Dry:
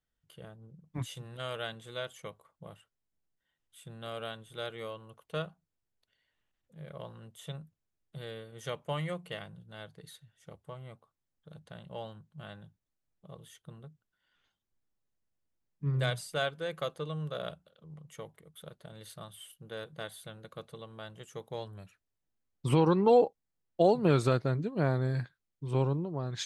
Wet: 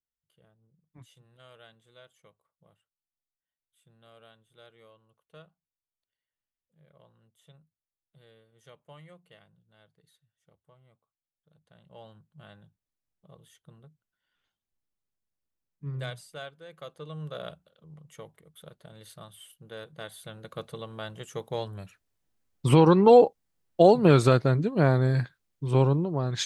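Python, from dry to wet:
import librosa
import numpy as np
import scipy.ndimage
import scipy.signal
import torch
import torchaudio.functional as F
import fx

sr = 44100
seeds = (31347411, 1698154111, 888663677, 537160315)

y = fx.gain(x, sr, db=fx.line((11.53, -15.5), (12.16, -4.5), (15.99, -4.5), (16.65, -11.5), (17.25, -0.5), (19.97, -0.5), (20.62, 7.0)))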